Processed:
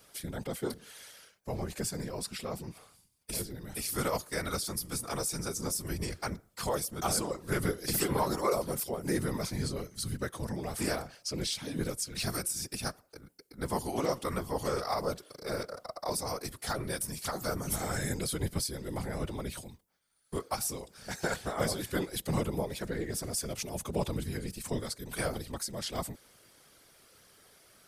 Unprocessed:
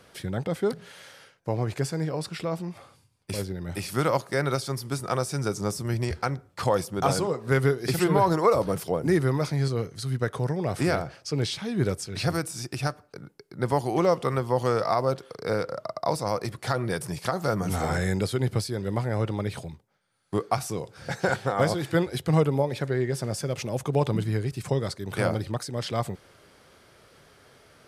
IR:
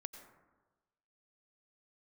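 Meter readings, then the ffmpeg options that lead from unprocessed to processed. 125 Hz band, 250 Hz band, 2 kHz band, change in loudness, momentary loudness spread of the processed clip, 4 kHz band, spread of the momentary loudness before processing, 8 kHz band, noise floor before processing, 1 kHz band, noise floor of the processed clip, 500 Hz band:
-10.5 dB, -7.5 dB, -6.5 dB, -7.0 dB, 9 LU, -2.0 dB, 9 LU, +3.0 dB, -60 dBFS, -8.5 dB, -65 dBFS, -9.0 dB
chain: -af "aemphasis=mode=production:type=75kf,afftfilt=real='hypot(re,im)*cos(2*PI*random(0))':imag='hypot(re,im)*sin(2*PI*random(1))':win_size=512:overlap=0.75,volume=0.708"

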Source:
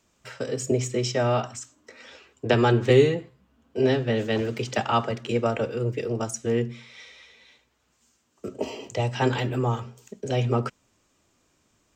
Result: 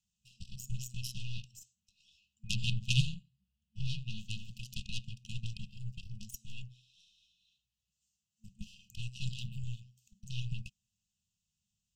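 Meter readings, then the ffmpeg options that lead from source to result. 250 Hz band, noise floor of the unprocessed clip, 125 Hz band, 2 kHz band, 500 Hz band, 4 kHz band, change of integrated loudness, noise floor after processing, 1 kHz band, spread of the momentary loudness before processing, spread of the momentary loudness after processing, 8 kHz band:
-20.5 dB, -69 dBFS, -10.5 dB, -14.0 dB, under -40 dB, -5.5 dB, -14.5 dB, under -85 dBFS, under -40 dB, 17 LU, 18 LU, -10.5 dB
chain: -af "aeval=exprs='0.596*(cos(1*acos(clip(val(0)/0.596,-1,1)))-cos(1*PI/2))+0.188*(cos(2*acos(clip(val(0)/0.596,-1,1)))-cos(2*PI/2))+0.168*(cos(3*acos(clip(val(0)/0.596,-1,1)))-cos(3*PI/2))+0.0531*(cos(8*acos(clip(val(0)/0.596,-1,1)))-cos(8*PI/2))':c=same,afftfilt=real='re*(1-between(b*sr/4096,220,2500))':imag='im*(1-between(b*sr/4096,220,2500))':win_size=4096:overlap=0.75"

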